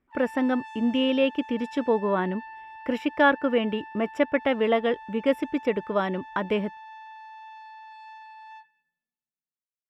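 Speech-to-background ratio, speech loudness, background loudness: 17.5 dB, -25.5 LUFS, -43.0 LUFS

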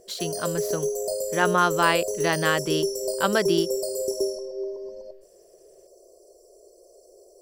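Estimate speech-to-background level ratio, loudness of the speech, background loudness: 2.5 dB, -25.5 LUFS, -28.0 LUFS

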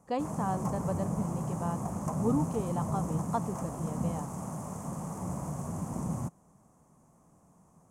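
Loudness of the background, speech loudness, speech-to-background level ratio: -35.5 LUFS, -35.5 LUFS, 0.0 dB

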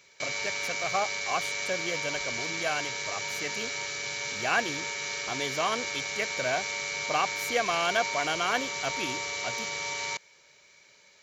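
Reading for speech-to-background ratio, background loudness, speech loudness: -1.0 dB, -31.5 LUFS, -32.5 LUFS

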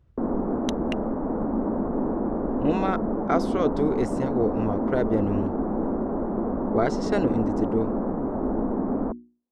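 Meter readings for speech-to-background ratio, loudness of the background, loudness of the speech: -0.5 dB, -27.5 LUFS, -28.0 LUFS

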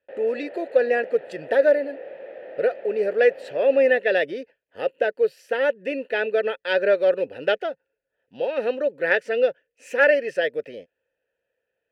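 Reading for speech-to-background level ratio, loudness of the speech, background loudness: 16.5 dB, -22.5 LUFS, -39.0 LUFS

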